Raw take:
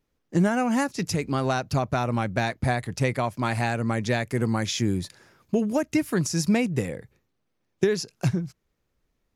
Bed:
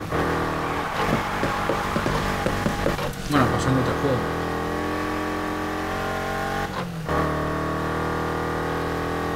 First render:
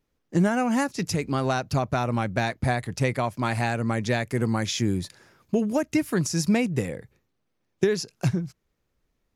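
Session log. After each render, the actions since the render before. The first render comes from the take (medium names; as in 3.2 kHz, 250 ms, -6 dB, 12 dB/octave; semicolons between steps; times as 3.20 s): no audible change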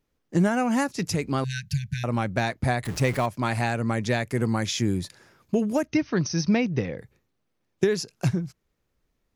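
1.44–2.04 s: brick-wall FIR band-stop 200–1500 Hz; 2.85–3.26 s: jump at every zero crossing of -32.5 dBFS; 5.87–6.98 s: brick-wall FIR low-pass 6.4 kHz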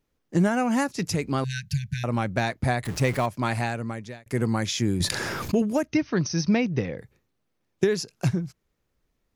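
3.51–4.26 s: fade out; 5.00–5.62 s: level flattener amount 70%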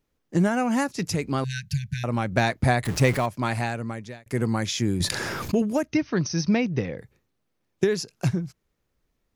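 2.32–3.18 s: gain +3.5 dB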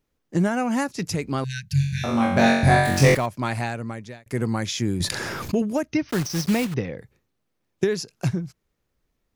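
1.73–3.15 s: flutter echo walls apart 3.7 m, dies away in 0.84 s; 6.09–6.76 s: block-companded coder 3-bit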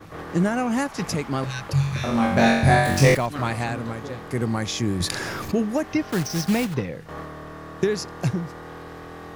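add bed -13 dB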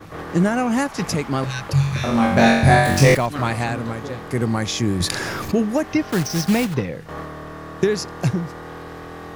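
trim +3.5 dB; peak limiter -1 dBFS, peak gain reduction 1.5 dB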